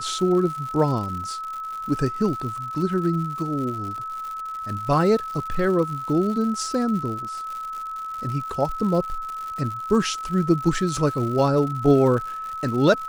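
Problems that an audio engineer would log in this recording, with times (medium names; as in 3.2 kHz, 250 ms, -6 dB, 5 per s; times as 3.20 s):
crackle 160 per s -31 dBFS
whine 1.3 kHz -29 dBFS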